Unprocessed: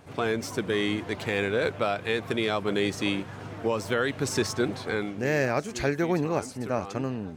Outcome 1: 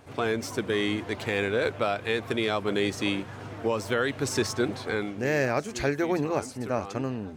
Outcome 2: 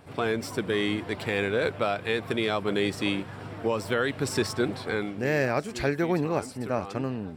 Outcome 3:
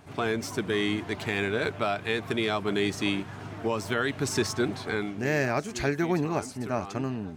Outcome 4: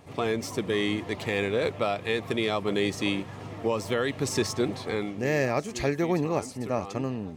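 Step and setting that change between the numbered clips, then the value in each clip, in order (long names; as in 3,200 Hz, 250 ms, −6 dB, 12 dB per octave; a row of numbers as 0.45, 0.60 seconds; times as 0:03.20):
notch filter, centre frequency: 170, 6,400, 510, 1,500 Hertz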